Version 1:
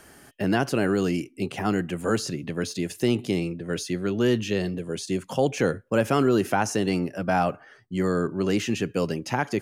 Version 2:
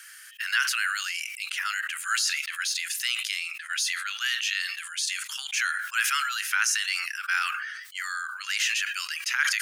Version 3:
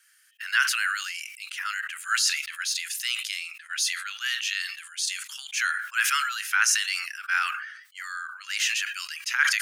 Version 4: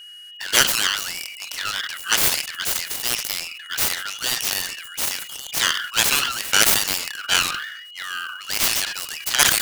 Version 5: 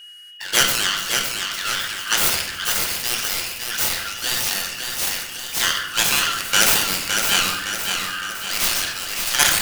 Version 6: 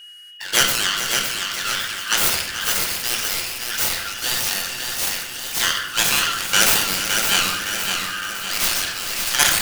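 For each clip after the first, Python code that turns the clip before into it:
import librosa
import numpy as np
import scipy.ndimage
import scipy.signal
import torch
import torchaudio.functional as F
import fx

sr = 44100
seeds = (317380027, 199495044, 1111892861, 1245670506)

y1 = scipy.signal.sosfilt(scipy.signal.butter(8, 1400.0, 'highpass', fs=sr, output='sos'), x)
y1 = fx.sustainer(y1, sr, db_per_s=36.0)
y1 = y1 * 10.0 ** (7.0 / 20.0)
y2 = fx.band_widen(y1, sr, depth_pct=70)
y3 = fx.self_delay(y2, sr, depth_ms=0.83)
y3 = fx.quant_float(y3, sr, bits=2)
y3 = y3 + 10.0 ** (-45.0 / 20.0) * np.sin(2.0 * np.pi * 2900.0 * np.arange(len(y3)) / sr)
y3 = y3 * 10.0 ** (6.5 / 20.0)
y4 = fx.echo_feedback(y3, sr, ms=562, feedback_pct=51, wet_db=-5.5)
y4 = fx.room_shoebox(y4, sr, seeds[0], volume_m3=340.0, walls='mixed', distance_m=0.83)
y4 = y4 * 10.0 ** (-1.5 / 20.0)
y5 = y4 + 10.0 ** (-11.5 / 20.0) * np.pad(y4, (int(435 * sr / 1000.0), 0))[:len(y4)]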